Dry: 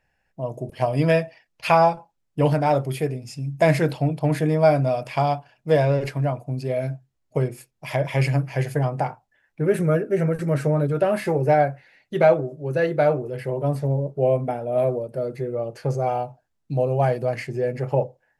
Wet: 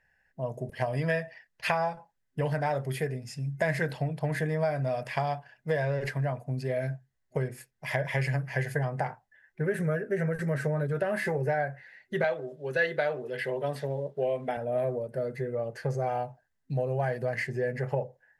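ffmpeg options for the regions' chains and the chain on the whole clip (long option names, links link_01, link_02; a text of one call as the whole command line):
ffmpeg -i in.wav -filter_complex "[0:a]asettb=1/sr,asplit=3[link_01][link_02][link_03];[link_01]atrim=end=12.244[link_04];[link_02]atrim=start=12.24:end=14.57,asetpts=PTS-STARTPTS,afade=type=in:duration=0.004:curve=qsin,afade=type=out:start_time=2.326:duration=0.004:curve=qsin,highpass=220,equalizer=frequency=3400:width_type=o:width=0.91:gain=12[link_05];[link_03]atrim=start=14.566[link_06];[link_04][link_05]acrossfade=duration=0.004:curve1=hsin:curve2=qsin[link_07];[link_07][link_06]acrossfade=duration=0.004:curve1=qsin:curve2=hsin,acompressor=threshold=-21dB:ratio=6,superequalizer=6b=0.447:11b=2.82,volume=-4dB" out.wav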